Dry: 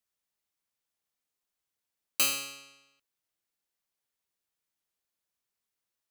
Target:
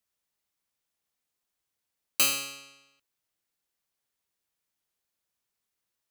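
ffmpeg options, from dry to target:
ffmpeg -i in.wav -af "equalizer=frequency=74:width_type=o:width=2.2:gain=2,volume=2.5dB" out.wav

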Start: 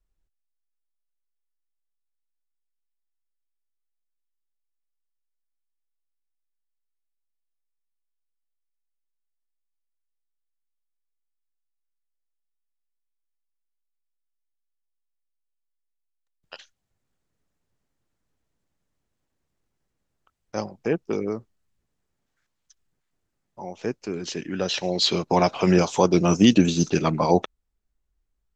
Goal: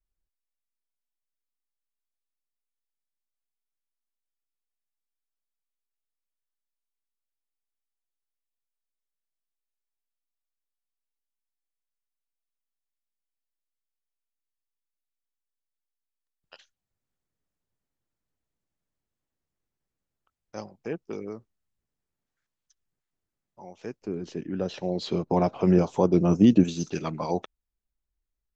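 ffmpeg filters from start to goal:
ffmpeg -i in.wav -filter_complex "[0:a]asettb=1/sr,asplit=3[link_01][link_02][link_03];[link_01]atrim=end=24.024[link_04];[link_02]atrim=start=24.02:end=26.64,asetpts=PTS-STARTPTS,afade=type=in:duration=0.004:curve=qsin,afade=type=out:start_time=2.616:duration=0.004:curve=qsin,tiltshelf=frequency=1200:gain=8.5[link_05];[link_03]atrim=start=26.636[link_06];[link_04][link_05]acrossfade=duration=0.004:curve1=hsin:curve2=qsin[link_07];[link_07][link_06]acrossfade=duration=0.004:curve1=qsin:curve2=hsin,volume=-9dB" out.wav

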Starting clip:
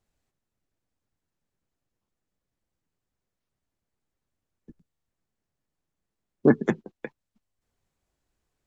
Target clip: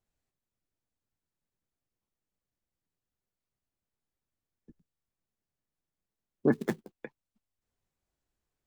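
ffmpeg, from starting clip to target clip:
ffmpeg -i in.wav -filter_complex "[0:a]asplit=3[link_01][link_02][link_03];[link_01]afade=type=out:start_time=6.52:duration=0.02[link_04];[link_02]acrusher=bits=4:mode=log:mix=0:aa=0.000001,afade=type=in:start_time=6.52:duration=0.02,afade=type=out:start_time=7.01:duration=0.02[link_05];[link_03]afade=type=in:start_time=7.01:duration=0.02[link_06];[link_04][link_05][link_06]amix=inputs=3:normalize=0,volume=-7dB" out.wav

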